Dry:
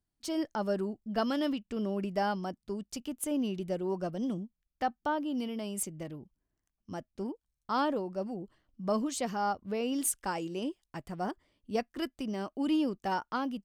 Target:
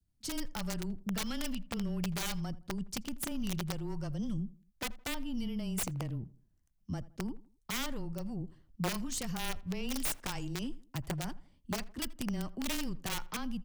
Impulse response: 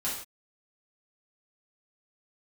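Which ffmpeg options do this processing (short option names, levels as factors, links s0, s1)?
-filter_complex "[0:a]aeval=exprs='0.133*(cos(1*acos(clip(val(0)/0.133,-1,1)))-cos(1*PI/2))+0.0133*(cos(3*acos(clip(val(0)/0.133,-1,1)))-cos(3*PI/2))+0.000944*(cos(5*acos(clip(val(0)/0.133,-1,1)))-cos(5*PI/2))+0.00596*(cos(6*acos(clip(val(0)/0.133,-1,1)))-cos(6*PI/2))':c=same,adynamicequalizer=threshold=0.00316:dfrequency=930:dqfactor=2.5:tfrequency=930:tqfactor=2.5:attack=5:release=100:ratio=0.375:range=2:mode=boostabove:tftype=bell,acrossover=split=150|1500[s0][s1][s2];[s0]alimiter=level_in=14.1:limit=0.0631:level=0:latency=1:release=62,volume=0.0708[s3];[s1]acompressor=threshold=0.00631:ratio=8[s4];[s2]asoftclip=type=hard:threshold=0.02[s5];[s3][s4][s5]amix=inputs=3:normalize=0,bass=f=250:g=15,treble=f=4000:g=4,aeval=exprs='(mod(23.7*val(0)+1,2)-1)/23.7':c=same,afreqshift=-16,asplit=2[s6][s7];[s7]adelay=82,lowpass=f=1900:p=1,volume=0.112,asplit=2[s8][s9];[s9]adelay=82,lowpass=f=1900:p=1,volume=0.38,asplit=2[s10][s11];[s11]adelay=82,lowpass=f=1900:p=1,volume=0.38[s12];[s6][s8][s10][s12]amix=inputs=4:normalize=0"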